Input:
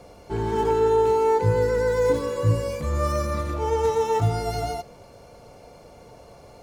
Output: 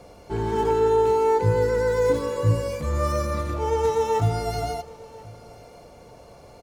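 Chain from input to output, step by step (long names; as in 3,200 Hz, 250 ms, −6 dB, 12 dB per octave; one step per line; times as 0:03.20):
single-tap delay 1,035 ms −22 dB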